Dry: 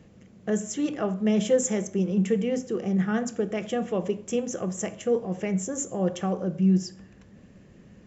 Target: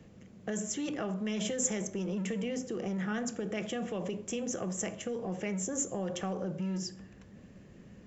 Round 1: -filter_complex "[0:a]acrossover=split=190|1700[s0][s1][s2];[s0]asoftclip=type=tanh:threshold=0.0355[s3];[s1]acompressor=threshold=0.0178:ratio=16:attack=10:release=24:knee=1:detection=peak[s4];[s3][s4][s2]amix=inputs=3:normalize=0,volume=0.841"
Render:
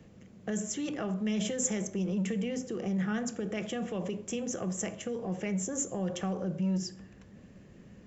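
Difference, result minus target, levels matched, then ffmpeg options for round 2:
saturation: distortion -8 dB
-filter_complex "[0:a]acrossover=split=190|1700[s0][s1][s2];[s0]asoftclip=type=tanh:threshold=0.00944[s3];[s1]acompressor=threshold=0.0178:ratio=16:attack=10:release=24:knee=1:detection=peak[s4];[s3][s4][s2]amix=inputs=3:normalize=0,volume=0.841"

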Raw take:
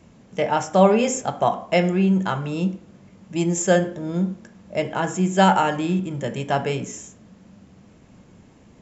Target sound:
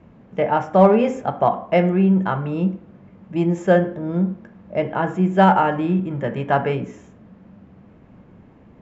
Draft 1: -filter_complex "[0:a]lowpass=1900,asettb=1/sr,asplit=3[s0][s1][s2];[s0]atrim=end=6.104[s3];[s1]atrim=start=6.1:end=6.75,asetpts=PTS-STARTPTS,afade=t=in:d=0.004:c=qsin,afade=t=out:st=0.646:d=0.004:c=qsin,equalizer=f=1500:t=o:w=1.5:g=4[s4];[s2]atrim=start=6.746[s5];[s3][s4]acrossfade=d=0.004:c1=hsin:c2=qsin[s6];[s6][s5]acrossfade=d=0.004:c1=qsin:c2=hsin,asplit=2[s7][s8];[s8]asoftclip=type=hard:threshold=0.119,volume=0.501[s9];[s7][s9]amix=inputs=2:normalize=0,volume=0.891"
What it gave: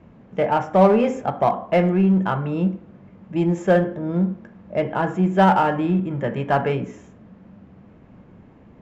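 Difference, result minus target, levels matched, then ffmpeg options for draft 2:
hard clipper: distortion +15 dB
-filter_complex "[0:a]lowpass=1900,asettb=1/sr,asplit=3[s0][s1][s2];[s0]atrim=end=6.104[s3];[s1]atrim=start=6.1:end=6.75,asetpts=PTS-STARTPTS,afade=t=in:d=0.004:c=qsin,afade=t=out:st=0.646:d=0.004:c=qsin,equalizer=f=1500:t=o:w=1.5:g=4[s4];[s2]atrim=start=6.746[s5];[s3][s4]acrossfade=d=0.004:c1=hsin:c2=qsin[s6];[s6][s5]acrossfade=d=0.004:c1=qsin:c2=hsin,asplit=2[s7][s8];[s8]asoftclip=type=hard:threshold=0.335,volume=0.501[s9];[s7][s9]amix=inputs=2:normalize=0,volume=0.891"

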